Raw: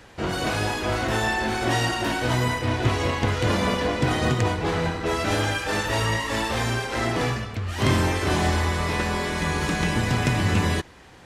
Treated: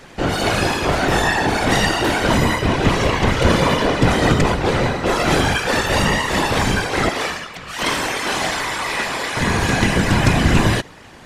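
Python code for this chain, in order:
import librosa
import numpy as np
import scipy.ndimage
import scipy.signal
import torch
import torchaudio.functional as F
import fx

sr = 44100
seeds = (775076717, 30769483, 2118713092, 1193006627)

y = fx.highpass(x, sr, hz=950.0, slope=6, at=(7.09, 9.37))
y = fx.whisperise(y, sr, seeds[0])
y = F.gain(torch.from_numpy(y), 7.0).numpy()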